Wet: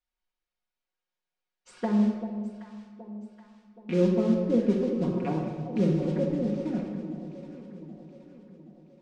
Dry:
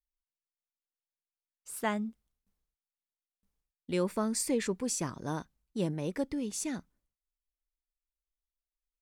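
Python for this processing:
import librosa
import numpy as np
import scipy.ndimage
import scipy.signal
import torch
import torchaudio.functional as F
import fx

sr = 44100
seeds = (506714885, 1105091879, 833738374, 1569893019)

p1 = fx.rattle_buzz(x, sr, strikes_db=-45.0, level_db=-34.0)
p2 = fx.env_lowpass_down(p1, sr, base_hz=460.0, full_db=-30.5)
p3 = fx.low_shelf(p2, sr, hz=120.0, db=-11.5)
p4 = p3 + 0.65 * np.pad(p3, (int(5.5 * sr / 1000.0), 0))[:len(p3)]
p5 = fx.mod_noise(p4, sr, seeds[0], snr_db=18)
p6 = scipy.ndimage.gaussian_filter1d(p5, 1.7, mode='constant')
p7 = p6 + fx.echo_alternate(p6, sr, ms=387, hz=890.0, feedback_pct=69, wet_db=-9.5, dry=0)
p8 = fx.room_shoebox(p7, sr, seeds[1], volume_m3=1700.0, walls='mixed', distance_m=1.8)
y = F.gain(torch.from_numpy(p8), 5.5).numpy()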